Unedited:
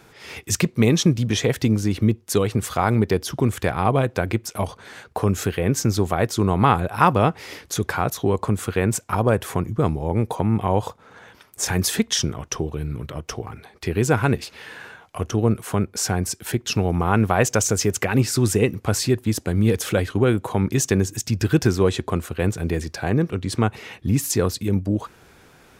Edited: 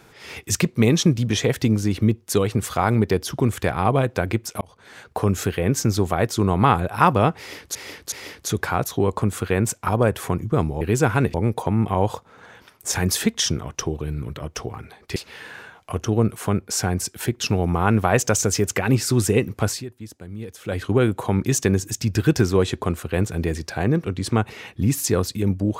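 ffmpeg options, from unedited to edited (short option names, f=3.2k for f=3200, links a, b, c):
-filter_complex "[0:a]asplit=9[a][b][c][d][e][f][g][h][i];[a]atrim=end=4.61,asetpts=PTS-STARTPTS,afade=t=out:st=4.606:d=0.004:c=hsin[j];[b]atrim=start=4.61:end=7.752,asetpts=PTS-STARTPTS,afade=t=in:d=0.47[k];[c]atrim=start=7.378:end=7.752[l];[d]atrim=start=7.378:end=10.072[m];[e]atrim=start=13.888:end=14.422[n];[f]atrim=start=10.068:end=13.892[o];[g]atrim=start=14.418:end=19.11,asetpts=PTS-STARTPTS,afade=t=out:st=4.482:d=0.21:silence=0.16788[p];[h]atrim=start=19.11:end=19.89,asetpts=PTS-STARTPTS,volume=-15.5dB[q];[i]atrim=start=19.89,asetpts=PTS-STARTPTS,afade=t=in:d=0.21:silence=0.16788[r];[j][k]concat=n=2:v=0:a=1[s];[s][l]acrossfade=d=0.004:c1=hsin:c2=hsin[t];[t][m]acrossfade=d=0.004:c1=hsin:c2=hsin[u];[u][n]acrossfade=d=0.004:c1=hsin:c2=hsin[v];[v][o]acrossfade=d=0.004:c1=hsin:c2=hsin[w];[p][q][r]concat=n=3:v=0:a=1[x];[w][x]acrossfade=d=0.004:c1=hsin:c2=hsin"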